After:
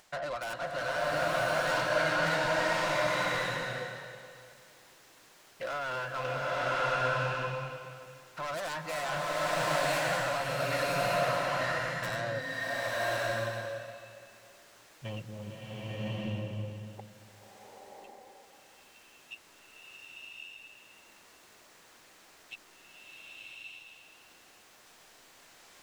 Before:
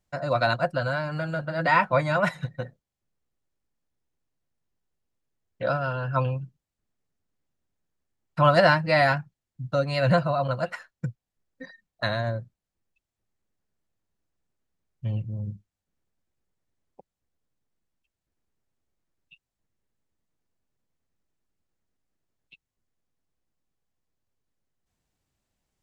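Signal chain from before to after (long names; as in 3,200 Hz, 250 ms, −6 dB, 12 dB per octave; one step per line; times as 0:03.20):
stylus tracing distortion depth 0.36 ms
low-shelf EQ 250 Hz −11 dB
reversed playback
downward compressor, threshold −31 dBFS, peak gain reduction 14.5 dB
reversed playback
brickwall limiter −29.5 dBFS, peak gain reduction 11.5 dB
mid-hump overdrive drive 16 dB, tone 5,700 Hz, clips at −29.5 dBFS
upward compression, threshold −51 dBFS
slow-attack reverb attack 1,120 ms, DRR −7.5 dB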